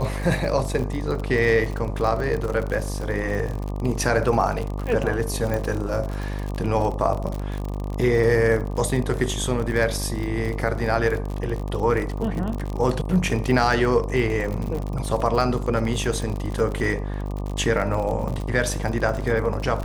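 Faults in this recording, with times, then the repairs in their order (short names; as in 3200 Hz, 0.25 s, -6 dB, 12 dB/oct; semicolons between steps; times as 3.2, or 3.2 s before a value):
buzz 50 Hz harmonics 24 -28 dBFS
crackle 45/s -27 dBFS
5.54 pop -14 dBFS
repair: de-click; de-hum 50 Hz, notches 24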